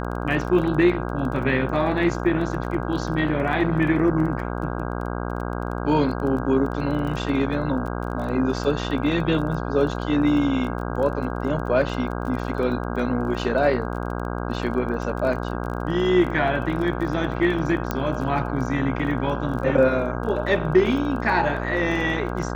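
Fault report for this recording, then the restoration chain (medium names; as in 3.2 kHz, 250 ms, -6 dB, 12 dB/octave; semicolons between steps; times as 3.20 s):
buzz 60 Hz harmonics 27 -28 dBFS
crackle 21 per s -31 dBFS
17.91 s: pop -10 dBFS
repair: de-click; de-hum 60 Hz, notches 27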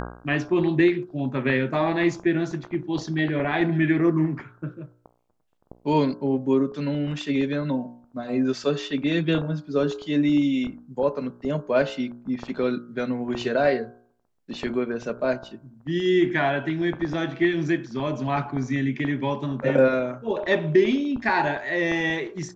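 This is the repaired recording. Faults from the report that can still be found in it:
nothing left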